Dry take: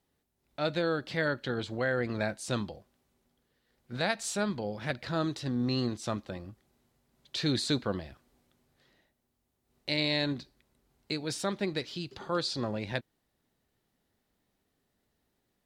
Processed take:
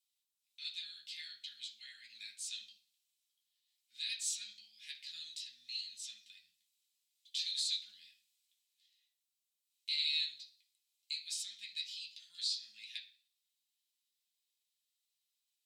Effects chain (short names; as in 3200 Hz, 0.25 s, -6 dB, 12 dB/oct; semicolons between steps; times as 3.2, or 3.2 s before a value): inverse Chebyshev high-pass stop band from 1200 Hz, stop band 50 dB; reverb RT60 0.40 s, pre-delay 3 ms, DRR -3.5 dB; gain -3.5 dB